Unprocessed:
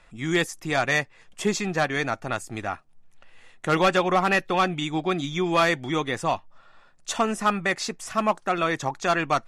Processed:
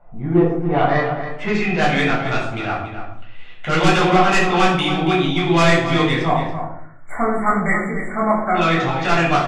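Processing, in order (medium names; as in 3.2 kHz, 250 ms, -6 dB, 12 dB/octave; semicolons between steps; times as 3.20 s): low-pass sweep 760 Hz -> 3.2 kHz, 0.52–1.85 s; sine folder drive 7 dB, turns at -6 dBFS; 6.22–8.55 s: brick-wall FIR band-stop 2.3–7.1 kHz; echo from a far wall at 48 m, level -9 dB; simulated room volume 970 m³, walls furnished, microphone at 7.4 m; trim -13.5 dB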